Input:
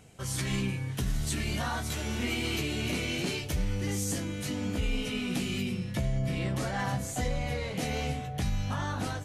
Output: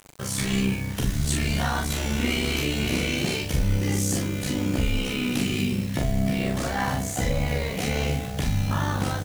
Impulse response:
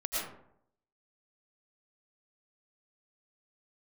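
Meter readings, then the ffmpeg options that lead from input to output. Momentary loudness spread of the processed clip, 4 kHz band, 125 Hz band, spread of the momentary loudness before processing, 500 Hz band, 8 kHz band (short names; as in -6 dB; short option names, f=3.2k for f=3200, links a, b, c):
2 LU, +6.0 dB, +6.0 dB, 2 LU, +6.0 dB, +6.5 dB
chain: -filter_complex "[0:a]acrusher=bits=7:mix=0:aa=0.000001,tremolo=f=65:d=0.824,asplit=2[a][b];[b]adelay=41,volume=-3.5dB[c];[a][c]amix=inputs=2:normalize=0,volume=8dB"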